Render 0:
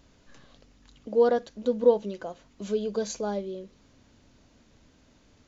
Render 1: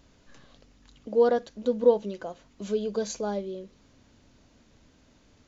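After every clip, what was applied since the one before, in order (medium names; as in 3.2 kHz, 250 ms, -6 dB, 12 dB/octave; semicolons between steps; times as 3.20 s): no audible change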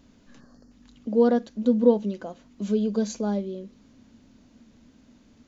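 time-frequency box 0.40–0.71 s, 1.9–4.2 kHz -22 dB; peaking EQ 230 Hz +12.5 dB 0.62 oct; trim -1 dB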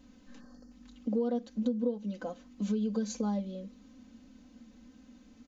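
comb 3.9 ms, depth 86%; compression 8:1, threshold -23 dBFS, peak gain reduction 16 dB; trim -4.5 dB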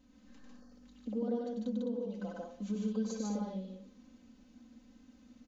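loudspeakers at several distances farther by 33 m -4 dB, 51 m -1 dB, 72 m -7 dB; on a send at -19 dB: reverberation RT60 0.55 s, pre-delay 125 ms; on the sum: trim -7.5 dB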